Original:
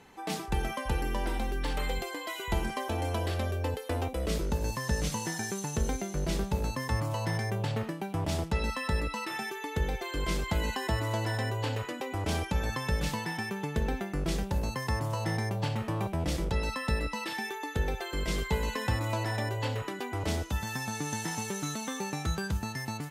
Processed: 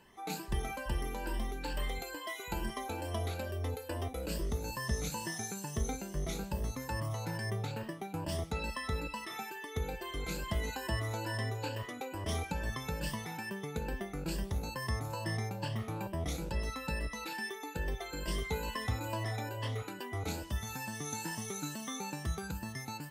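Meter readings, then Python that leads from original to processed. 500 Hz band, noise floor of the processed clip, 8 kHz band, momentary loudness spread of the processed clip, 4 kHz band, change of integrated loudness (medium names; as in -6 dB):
-5.5 dB, -46 dBFS, -3.5 dB, 4 LU, -5.0 dB, -5.5 dB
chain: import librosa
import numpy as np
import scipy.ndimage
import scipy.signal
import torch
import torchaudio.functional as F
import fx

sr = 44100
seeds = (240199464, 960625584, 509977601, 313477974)

y = fx.spec_ripple(x, sr, per_octave=1.3, drift_hz=2.3, depth_db=13)
y = fx.high_shelf(y, sr, hz=12000.0, db=8.5)
y = y + 10.0 ** (-22.5 / 20.0) * np.pad(y, (int(163 * sr / 1000.0), 0))[:len(y)]
y = y * librosa.db_to_amplitude(-7.5)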